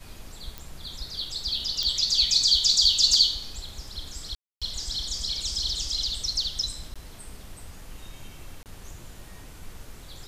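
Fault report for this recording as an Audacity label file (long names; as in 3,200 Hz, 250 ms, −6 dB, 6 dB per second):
0.580000	0.580000	click
1.830000	1.830000	click −14 dBFS
4.350000	4.620000	drop-out 266 ms
6.940000	6.960000	drop-out 16 ms
8.630000	8.660000	drop-out 28 ms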